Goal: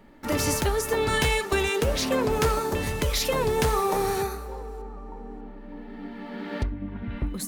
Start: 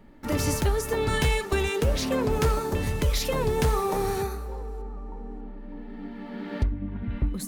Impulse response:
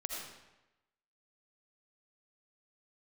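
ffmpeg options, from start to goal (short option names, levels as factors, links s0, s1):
-af "lowshelf=f=250:g=-7.5,volume=1.5"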